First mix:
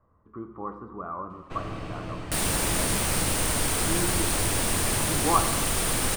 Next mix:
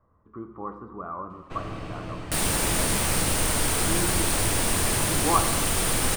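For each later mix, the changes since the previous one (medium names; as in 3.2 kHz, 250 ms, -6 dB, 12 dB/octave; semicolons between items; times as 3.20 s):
second sound: send +9.0 dB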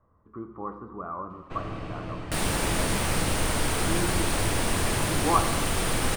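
master: add treble shelf 5.9 kHz -9 dB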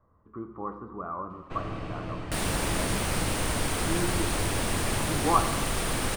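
second sound: send off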